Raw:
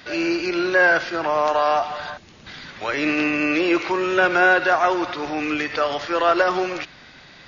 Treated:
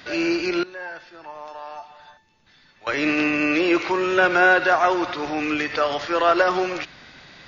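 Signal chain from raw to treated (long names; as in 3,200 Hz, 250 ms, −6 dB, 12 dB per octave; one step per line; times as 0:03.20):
0:00.63–0:02.87: tuned comb filter 890 Hz, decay 0.34 s, mix 90%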